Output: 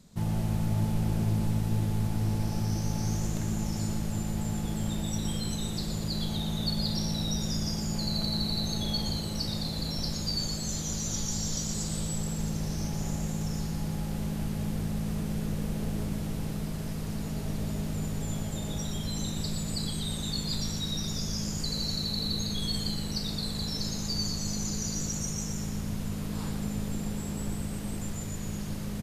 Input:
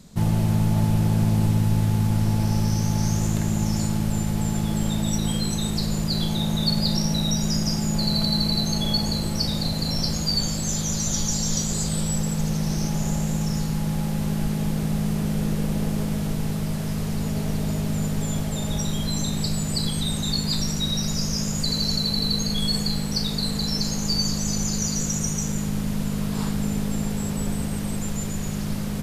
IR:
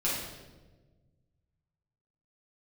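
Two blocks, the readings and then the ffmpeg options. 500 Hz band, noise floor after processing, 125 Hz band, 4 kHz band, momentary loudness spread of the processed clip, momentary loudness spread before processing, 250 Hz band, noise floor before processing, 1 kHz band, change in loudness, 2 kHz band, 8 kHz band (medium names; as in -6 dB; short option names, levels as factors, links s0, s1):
-7.0 dB, -34 dBFS, -7.5 dB, -7.5 dB, 5 LU, 5 LU, -8.0 dB, -27 dBFS, -7.5 dB, -7.5 dB, -7.5 dB, -7.5 dB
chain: -filter_complex "[0:a]asplit=8[s0][s1][s2][s3][s4][s5][s6][s7];[s1]adelay=119,afreqshift=-110,volume=0.447[s8];[s2]adelay=238,afreqshift=-220,volume=0.26[s9];[s3]adelay=357,afreqshift=-330,volume=0.15[s10];[s4]adelay=476,afreqshift=-440,volume=0.0871[s11];[s5]adelay=595,afreqshift=-550,volume=0.0507[s12];[s6]adelay=714,afreqshift=-660,volume=0.0292[s13];[s7]adelay=833,afreqshift=-770,volume=0.017[s14];[s0][s8][s9][s10][s11][s12][s13][s14]amix=inputs=8:normalize=0,volume=0.376"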